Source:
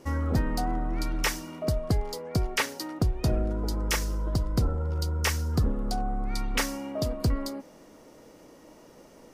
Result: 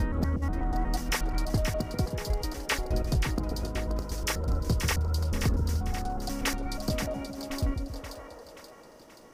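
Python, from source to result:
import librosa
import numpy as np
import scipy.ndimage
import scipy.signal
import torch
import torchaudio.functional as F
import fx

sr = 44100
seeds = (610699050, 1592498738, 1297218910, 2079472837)

y = fx.block_reorder(x, sr, ms=121.0, group=4)
y = fx.spec_box(y, sr, start_s=7.94, length_s=0.5, low_hz=420.0, high_hz=2000.0, gain_db=10)
y = fx.echo_split(y, sr, split_hz=620.0, low_ms=137, high_ms=529, feedback_pct=52, wet_db=-6)
y = y * 10.0 ** (-2.5 / 20.0)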